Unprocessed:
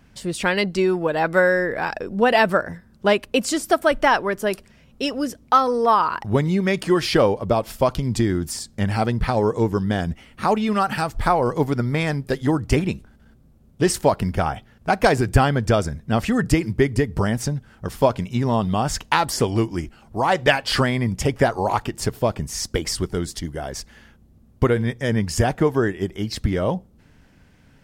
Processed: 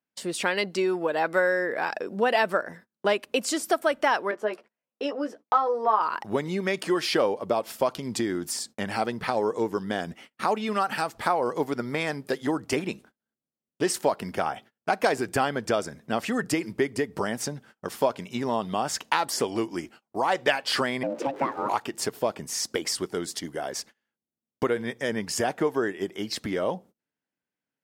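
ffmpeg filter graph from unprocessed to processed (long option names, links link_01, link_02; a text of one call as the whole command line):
ffmpeg -i in.wav -filter_complex "[0:a]asettb=1/sr,asplit=3[link_01][link_02][link_03];[link_01]atrim=end=4.314[link_04];[link_02]atrim=start=4.31:end=6.01,asetpts=PTS-STARTPTS,afade=type=in:duration=0.004:curve=qsin,afade=type=out:start_time=1.696:duration=0.004:curve=qsin,bandpass=frequency=730:width_type=q:width=0.69,asplit=2[link_05][link_06];[link_06]adelay=14,volume=-4dB[link_07];[link_05][link_07]amix=inputs=2:normalize=0,atrim=end_sample=74970[link_08];[link_03]atrim=start=6.006[link_09];[link_04][link_08]acrossfade=duration=0.004:curve1=hsin:curve2=qsin[link_10];[link_10][link_09]acrossfade=duration=0.004:curve1=qsin:curve2=hsin,asettb=1/sr,asplit=3[link_11][link_12][link_13];[link_11]atrim=end=21.034[link_14];[link_12]atrim=start=21.03:end=21.69,asetpts=PTS-STARTPTS,afade=type=in:duration=0.004:curve=qsin,afade=type=out:start_time=0.656:duration=0.004:curve=qsin,aeval=exprs='val(0)+0.5*0.0266*sgn(val(0))':channel_layout=same,lowpass=frequency=1200:poles=1,aeval=exprs='val(0)*sin(2*PI*410*n/s)':channel_layout=same[link_15];[link_13]atrim=start=21.686[link_16];[link_14][link_15]acrossfade=duration=0.004:curve1=hsin:curve2=qsin[link_17];[link_17][link_16]acrossfade=duration=0.004:curve1=qsin:curve2=hsin,agate=range=-32dB:threshold=-40dB:ratio=16:detection=peak,highpass=290,acompressor=threshold=-29dB:ratio=1.5" out.wav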